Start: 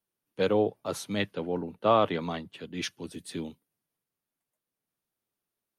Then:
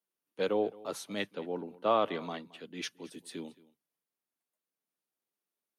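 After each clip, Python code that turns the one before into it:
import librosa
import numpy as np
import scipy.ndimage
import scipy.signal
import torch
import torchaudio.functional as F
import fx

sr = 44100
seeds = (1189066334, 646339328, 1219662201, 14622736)

y = scipy.signal.sosfilt(scipy.signal.butter(2, 220.0, 'highpass', fs=sr, output='sos'), x)
y = y + 10.0 ** (-21.5 / 20.0) * np.pad(y, (int(221 * sr / 1000.0), 0))[:len(y)]
y = F.gain(torch.from_numpy(y), -4.5).numpy()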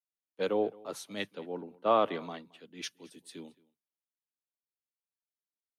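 y = fx.band_widen(x, sr, depth_pct=40)
y = F.gain(torch.from_numpy(y), -1.5).numpy()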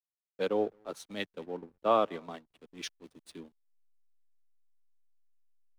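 y = fx.backlash(x, sr, play_db=-48.0)
y = fx.transient(y, sr, attack_db=0, sustain_db=-8)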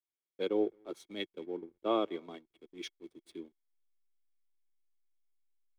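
y = fx.small_body(x, sr, hz=(350.0, 2200.0, 3300.0), ring_ms=35, db=15)
y = F.gain(torch.from_numpy(y), -8.5).numpy()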